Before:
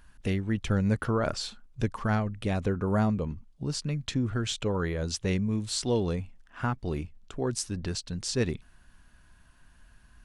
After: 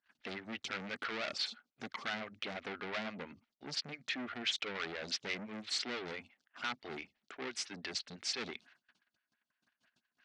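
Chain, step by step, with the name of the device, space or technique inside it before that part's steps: gate -51 dBFS, range -25 dB; vibe pedal into a guitar amplifier (photocell phaser 5.9 Hz; tube stage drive 37 dB, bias 0.45; speaker cabinet 110–4600 Hz, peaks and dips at 120 Hz -4 dB, 240 Hz +5 dB, 490 Hz -3 dB, 1000 Hz -6 dB, 2100 Hz +5 dB); tilt +4.5 dB/oct; gain +3 dB

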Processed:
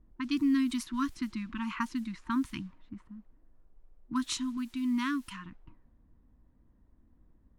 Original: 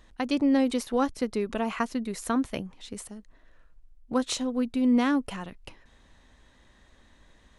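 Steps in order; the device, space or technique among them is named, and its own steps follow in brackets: FFT band-reject 350–910 Hz; cassette deck with a dynamic noise filter (white noise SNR 29 dB; low-pass opened by the level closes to 380 Hz, open at -25.5 dBFS); 4.57–5.45 low shelf 420 Hz -6 dB; gain -3.5 dB

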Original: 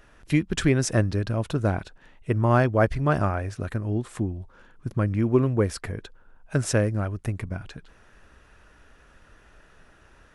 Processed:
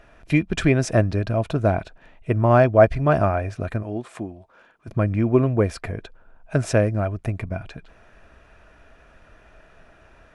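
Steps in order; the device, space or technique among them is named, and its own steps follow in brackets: inside a helmet (high shelf 5900 Hz -10 dB; small resonant body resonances 660/2400 Hz, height 10 dB, ringing for 35 ms); 3.82–4.87 HPF 300 Hz -> 710 Hz 6 dB/oct; gain +2.5 dB

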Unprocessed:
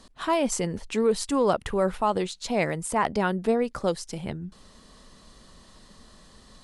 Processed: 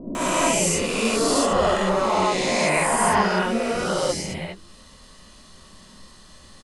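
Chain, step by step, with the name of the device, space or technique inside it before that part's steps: spectral swells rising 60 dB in 2.62 s; 1.3–2.57 LPF 8800 Hz 12 dB/oct; presence and air boost (bell 2500 Hz +3 dB 0.77 oct; high shelf 10000 Hz +5.5 dB); bands offset in time lows, highs 0.15 s, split 390 Hz; non-linear reverb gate 90 ms rising, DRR -4 dB; gain -5 dB

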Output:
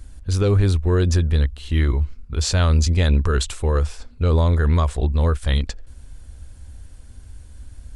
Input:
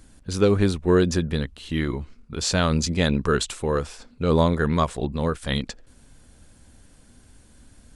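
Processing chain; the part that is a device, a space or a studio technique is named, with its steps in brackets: car stereo with a boomy subwoofer (resonant low shelf 110 Hz +12 dB, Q 1.5; limiter -11 dBFS, peak gain reduction 5.5 dB); gain +1 dB

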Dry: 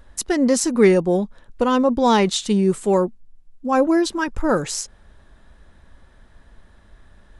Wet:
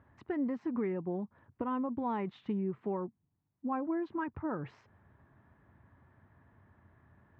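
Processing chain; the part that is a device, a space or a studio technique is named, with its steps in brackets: bass amplifier (compressor 4:1, threshold -24 dBFS, peak gain reduction 12.5 dB; speaker cabinet 84–2100 Hz, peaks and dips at 93 Hz +8 dB, 130 Hz +8 dB, 290 Hz +3 dB, 520 Hz -6 dB, 1000 Hz +3 dB, 1500 Hz -3 dB); gain -9 dB

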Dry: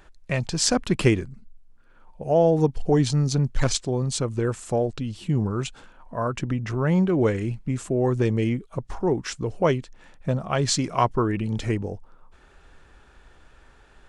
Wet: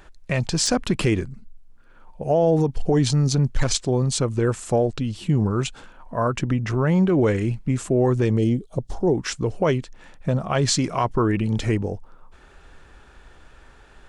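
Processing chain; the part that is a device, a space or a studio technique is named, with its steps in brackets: 8.38–9.14 band shelf 1600 Hz -12.5 dB; clipper into limiter (hard clip -7.5 dBFS, distortion -39 dB; limiter -15 dBFS, peak gain reduction 7.5 dB); gain +4 dB

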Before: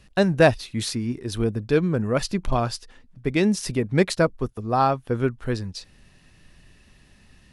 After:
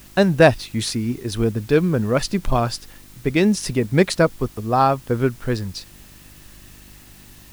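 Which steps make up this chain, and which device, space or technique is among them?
video cassette with head-switching buzz (buzz 50 Hz, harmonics 7, -53 dBFS -4 dB/oct; white noise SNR 28 dB); gain +3.5 dB

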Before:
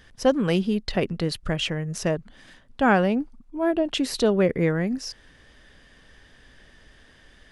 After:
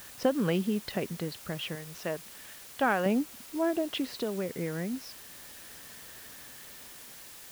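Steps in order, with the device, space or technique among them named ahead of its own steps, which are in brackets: 1.75–3.06 low shelf 350 Hz -11 dB; medium wave at night (BPF 110–3700 Hz; compressor, threshold -22 dBFS, peak gain reduction 8.5 dB; tremolo 0.33 Hz, depth 61%; whine 10000 Hz -62 dBFS; white noise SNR 15 dB)

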